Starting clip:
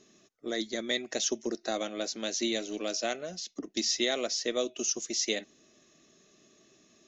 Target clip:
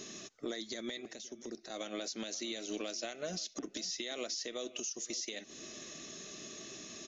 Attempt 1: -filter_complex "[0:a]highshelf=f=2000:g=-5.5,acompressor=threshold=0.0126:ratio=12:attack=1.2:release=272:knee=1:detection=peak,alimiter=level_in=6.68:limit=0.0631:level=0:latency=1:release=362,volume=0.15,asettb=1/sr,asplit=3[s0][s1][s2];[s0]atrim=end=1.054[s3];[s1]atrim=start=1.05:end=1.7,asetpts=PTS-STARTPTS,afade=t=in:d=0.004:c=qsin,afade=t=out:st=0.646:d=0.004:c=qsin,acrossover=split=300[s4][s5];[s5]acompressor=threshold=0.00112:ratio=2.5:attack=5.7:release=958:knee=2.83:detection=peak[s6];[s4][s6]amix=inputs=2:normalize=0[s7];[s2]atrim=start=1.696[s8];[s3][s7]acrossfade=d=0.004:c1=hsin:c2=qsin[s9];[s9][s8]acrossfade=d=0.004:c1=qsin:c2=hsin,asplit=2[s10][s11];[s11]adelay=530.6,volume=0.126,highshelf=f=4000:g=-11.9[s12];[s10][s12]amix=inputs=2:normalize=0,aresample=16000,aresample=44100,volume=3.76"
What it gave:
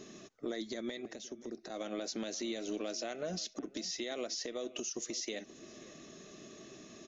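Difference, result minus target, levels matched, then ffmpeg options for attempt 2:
4 kHz band -3.0 dB
-filter_complex "[0:a]highshelf=f=2000:g=5.5,acompressor=threshold=0.0126:ratio=12:attack=1.2:release=272:knee=1:detection=peak,alimiter=level_in=6.68:limit=0.0631:level=0:latency=1:release=362,volume=0.15,asettb=1/sr,asplit=3[s0][s1][s2];[s0]atrim=end=1.054[s3];[s1]atrim=start=1.05:end=1.7,asetpts=PTS-STARTPTS,afade=t=in:d=0.004:c=qsin,afade=t=out:st=0.646:d=0.004:c=qsin,acrossover=split=300[s4][s5];[s5]acompressor=threshold=0.00112:ratio=2.5:attack=5.7:release=958:knee=2.83:detection=peak[s6];[s4][s6]amix=inputs=2:normalize=0[s7];[s2]atrim=start=1.696[s8];[s3][s7]acrossfade=d=0.004:c1=hsin:c2=qsin[s9];[s9][s8]acrossfade=d=0.004:c1=qsin:c2=hsin,asplit=2[s10][s11];[s11]adelay=530.6,volume=0.126,highshelf=f=4000:g=-11.9[s12];[s10][s12]amix=inputs=2:normalize=0,aresample=16000,aresample=44100,volume=3.76"

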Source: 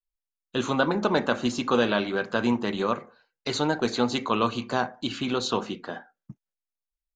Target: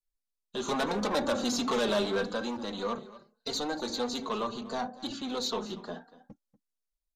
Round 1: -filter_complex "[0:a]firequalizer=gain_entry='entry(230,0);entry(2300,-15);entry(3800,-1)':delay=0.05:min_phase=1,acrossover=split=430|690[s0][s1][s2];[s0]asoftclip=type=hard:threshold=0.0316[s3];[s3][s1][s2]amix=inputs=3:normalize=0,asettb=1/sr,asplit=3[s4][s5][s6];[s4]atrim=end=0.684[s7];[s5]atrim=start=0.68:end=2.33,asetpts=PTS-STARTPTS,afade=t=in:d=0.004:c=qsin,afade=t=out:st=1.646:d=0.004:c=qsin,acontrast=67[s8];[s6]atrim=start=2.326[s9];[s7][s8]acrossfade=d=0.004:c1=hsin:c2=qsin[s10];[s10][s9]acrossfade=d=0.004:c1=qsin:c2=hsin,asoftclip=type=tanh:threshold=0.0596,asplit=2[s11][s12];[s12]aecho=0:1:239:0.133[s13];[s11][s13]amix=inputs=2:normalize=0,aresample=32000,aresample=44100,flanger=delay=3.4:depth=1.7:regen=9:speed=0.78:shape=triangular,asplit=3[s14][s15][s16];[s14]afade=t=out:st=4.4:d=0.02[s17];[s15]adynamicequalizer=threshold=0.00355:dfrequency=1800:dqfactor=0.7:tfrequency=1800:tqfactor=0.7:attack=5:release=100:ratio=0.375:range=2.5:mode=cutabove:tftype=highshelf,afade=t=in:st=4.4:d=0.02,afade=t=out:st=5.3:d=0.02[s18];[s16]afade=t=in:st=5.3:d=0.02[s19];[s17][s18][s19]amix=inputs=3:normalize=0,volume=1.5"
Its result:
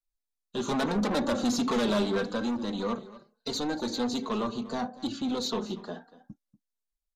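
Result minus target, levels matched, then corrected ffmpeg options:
hard clipper: distortion -5 dB
-filter_complex "[0:a]firequalizer=gain_entry='entry(230,0);entry(2300,-15);entry(3800,-1)':delay=0.05:min_phase=1,acrossover=split=430|690[s0][s1][s2];[s0]asoftclip=type=hard:threshold=0.00891[s3];[s3][s1][s2]amix=inputs=3:normalize=0,asettb=1/sr,asplit=3[s4][s5][s6];[s4]atrim=end=0.684[s7];[s5]atrim=start=0.68:end=2.33,asetpts=PTS-STARTPTS,afade=t=in:d=0.004:c=qsin,afade=t=out:st=1.646:d=0.004:c=qsin,acontrast=67[s8];[s6]atrim=start=2.326[s9];[s7][s8]acrossfade=d=0.004:c1=hsin:c2=qsin[s10];[s10][s9]acrossfade=d=0.004:c1=qsin:c2=hsin,asoftclip=type=tanh:threshold=0.0596,asplit=2[s11][s12];[s12]aecho=0:1:239:0.133[s13];[s11][s13]amix=inputs=2:normalize=0,aresample=32000,aresample=44100,flanger=delay=3.4:depth=1.7:regen=9:speed=0.78:shape=triangular,asplit=3[s14][s15][s16];[s14]afade=t=out:st=4.4:d=0.02[s17];[s15]adynamicequalizer=threshold=0.00355:dfrequency=1800:dqfactor=0.7:tfrequency=1800:tqfactor=0.7:attack=5:release=100:ratio=0.375:range=2.5:mode=cutabove:tftype=highshelf,afade=t=in:st=4.4:d=0.02,afade=t=out:st=5.3:d=0.02[s18];[s16]afade=t=in:st=5.3:d=0.02[s19];[s17][s18][s19]amix=inputs=3:normalize=0,volume=1.5"

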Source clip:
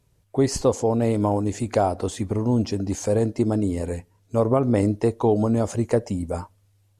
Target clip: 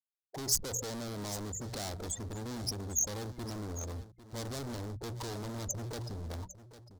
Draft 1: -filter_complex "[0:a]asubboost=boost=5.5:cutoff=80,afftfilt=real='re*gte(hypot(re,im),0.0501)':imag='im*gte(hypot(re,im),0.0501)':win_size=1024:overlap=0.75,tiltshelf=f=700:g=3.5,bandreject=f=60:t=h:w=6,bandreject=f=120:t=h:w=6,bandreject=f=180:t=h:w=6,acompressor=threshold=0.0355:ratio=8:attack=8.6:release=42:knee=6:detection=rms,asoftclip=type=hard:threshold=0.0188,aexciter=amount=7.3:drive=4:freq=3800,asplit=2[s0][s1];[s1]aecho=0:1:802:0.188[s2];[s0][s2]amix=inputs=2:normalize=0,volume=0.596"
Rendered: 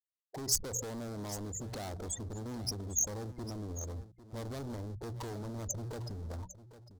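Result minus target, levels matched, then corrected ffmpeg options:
compression: peak gain reduction +7.5 dB
-filter_complex "[0:a]asubboost=boost=5.5:cutoff=80,afftfilt=real='re*gte(hypot(re,im),0.0501)':imag='im*gte(hypot(re,im),0.0501)':win_size=1024:overlap=0.75,tiltshelf=f=700:g=3.5,bandreject=f=60:t=h:w=6,bandreject=f=120:t=h:w=6,bandreject=f=180:t=h:w=6,acompressor=threshold=0.0944:ratio=8:attack=8.6:release=42:knee=6:detection=rms,asoftclip=type=hard:threshold=0.0188,aexciter=amount=7.3:drive=4:freq=3800,asplit=2[s0][s1];[s1]aecho=0:1:802:0.188[s2];[s0][s2]amix=inputs=2:normalize=0,volume=0.596"

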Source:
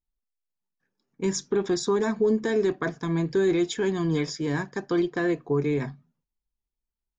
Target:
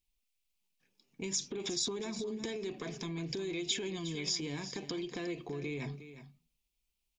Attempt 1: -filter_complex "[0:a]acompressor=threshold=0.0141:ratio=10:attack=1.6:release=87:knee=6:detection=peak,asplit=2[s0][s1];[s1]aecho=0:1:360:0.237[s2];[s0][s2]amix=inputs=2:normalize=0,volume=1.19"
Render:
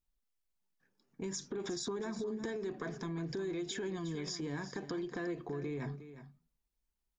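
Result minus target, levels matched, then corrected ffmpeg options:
4 kHz band -6.5 dB
-filter_complex "[0:a]acompressor=threshold=0.0141:ratio=10:attack=1.6:release=87:knee=6:detection=peak,highshelf=f=2000:t=q:w=3:g=7,asplit=2[s0][s1];[s1]aecho=0:1:360:0.237[s2];[s0][s2]amix=inputs=2:normalize=0,volume=1.19"

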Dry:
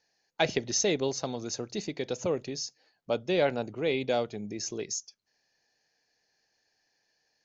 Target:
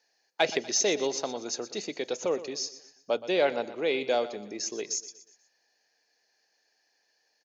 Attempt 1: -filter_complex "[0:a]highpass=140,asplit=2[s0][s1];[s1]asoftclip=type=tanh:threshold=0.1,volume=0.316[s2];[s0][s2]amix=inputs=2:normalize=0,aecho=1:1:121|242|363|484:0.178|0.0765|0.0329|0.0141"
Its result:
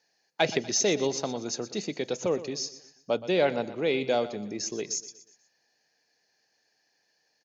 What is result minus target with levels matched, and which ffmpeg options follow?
125 Hz band +10.0 dB
-filter_complex "[0:a]highpass=330,asplit=2[s0][s1];[s1]asoftclip=type=tanh:threshold=0.1,volume=0.316[s2];[s0][s2]amix=inputs=2:normalize=0,aecho=1:1:121|242|363|484:0.178|0.0765|0.0329|0.0141"

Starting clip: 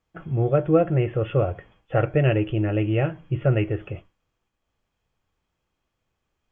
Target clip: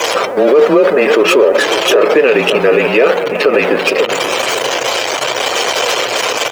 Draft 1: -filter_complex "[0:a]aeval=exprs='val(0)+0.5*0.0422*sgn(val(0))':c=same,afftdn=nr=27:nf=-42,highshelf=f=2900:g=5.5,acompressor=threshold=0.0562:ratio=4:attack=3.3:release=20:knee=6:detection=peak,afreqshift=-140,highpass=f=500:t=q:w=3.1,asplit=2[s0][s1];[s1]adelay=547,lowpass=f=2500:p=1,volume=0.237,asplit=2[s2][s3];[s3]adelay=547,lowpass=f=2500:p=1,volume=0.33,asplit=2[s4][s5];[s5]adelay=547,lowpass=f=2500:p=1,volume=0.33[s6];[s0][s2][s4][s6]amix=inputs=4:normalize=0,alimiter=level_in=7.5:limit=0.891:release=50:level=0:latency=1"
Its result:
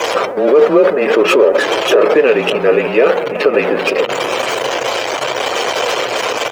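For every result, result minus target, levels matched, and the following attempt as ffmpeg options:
compression: peak gain reduction +4.5 dB; 8 kHz band -4.5 dB
-filter_complex "[0:a]aeval=exprs='val(0)+0.5*0.0422*sgn(val(0))':c=same,afftdn=nr=27:nf=-42,highshelf=f=2900:g=5.5,acompressor=threshold=0.119:ratio=4:attack=3.3:release=20:knee=6:detection=peak,afreqshift=-140,highpass=f=500:t=q:w=3.1,asplit=2[s0][s1];[s1]adelay=547,lowpass=f=2500:p=1,volume=0.237,asplit=2[s2][s3];[s3]adelay=547,lowpass=f=2500:p=1,volume=0.33,asplit=2[s4][s5];[s5]adelay=547,lowpass=f=2500:p=1,volume=0.33[s6];[s0][s2][s4][s6]amix=inputs=4:normalize=0,alimiter=level_in=7.5:limit=0.891:release=50:level=0:latency=1"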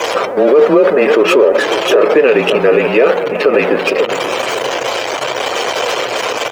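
8 kHz band -5.5 dB
-filter_complex "[0:a]aeval=exprs='val(0)+0.5*0.0422*sgn(val(0))':c=same,afftdn=nr=27:nf=-42,highshelf=f=2900:g=13,acompressor=threshold=0.119:ratio=4:attack=3.3:release=20:knee=6:detection=peak,afreqshift=-140,highpass=f=500:t=q:w=3.1,asplit=2[s0][s1];[s1]adelay=547,lowpass=f=2500:p=1,volume=0.237,asplit=2[s2][s3];[s3]adelay=547,lowpass=f=2500:p=1,volume=0.33,asplit=2[s4][s5];[s5]adelay=547,lowpass=f=2500:p=1,volume=0.33[s6];[s0][s2][s4][s6]amix=inputs=4:normalize=0,alimiter=level_in=7.5:limit=0.891:release=50:level=0:latency=1"

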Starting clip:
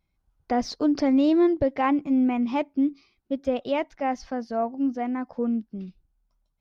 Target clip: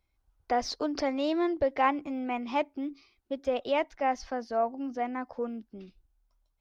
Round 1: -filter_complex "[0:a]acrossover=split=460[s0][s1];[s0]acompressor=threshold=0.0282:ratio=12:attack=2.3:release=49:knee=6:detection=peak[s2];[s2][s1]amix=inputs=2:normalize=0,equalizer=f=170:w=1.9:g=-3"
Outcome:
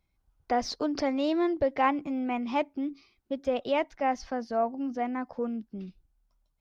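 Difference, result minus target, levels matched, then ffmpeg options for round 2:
125 Hz band +4.0 dB
-filter_complex "[0:a]acrossover=split=460[s0][s1];[s0]acompressor=threshold=0.0282:ratio=12:attack=2.3:release=49:knee=6:detection=peak[s2];[s2][s1]amix=inputs=2:normalize=0,equalizer=f=170:w=1.9:g=-13.5"

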